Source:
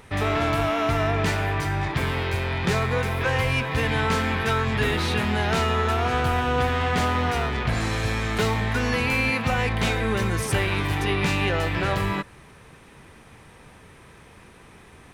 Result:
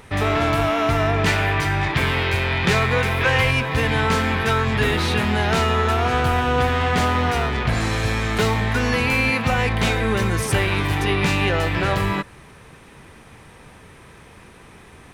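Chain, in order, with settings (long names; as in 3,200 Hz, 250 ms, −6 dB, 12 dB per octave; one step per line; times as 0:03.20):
0:01.26–0:03.51: parametric band 2,600 Hz +5 dB 1.7 octaves
level +3.5 dB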